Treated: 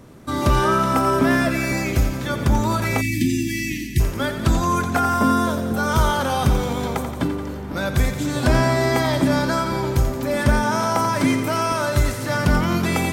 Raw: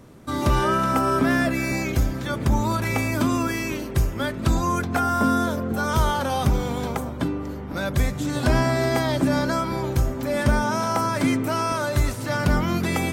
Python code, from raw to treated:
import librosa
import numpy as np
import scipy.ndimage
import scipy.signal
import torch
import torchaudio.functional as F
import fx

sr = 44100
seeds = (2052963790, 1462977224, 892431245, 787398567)

y = fx.echo_thinned(x, sr, ms=87, feedback_pct=72, hz=580.0, wet_db=-9.0)
y = fx.spec_erase(y, sr, start_s=3.01, length_s=0.99, low_hz=380.0, high_hz=1700.0)
y = F.gain(torch.from_numpy(y), 2.5).numpy()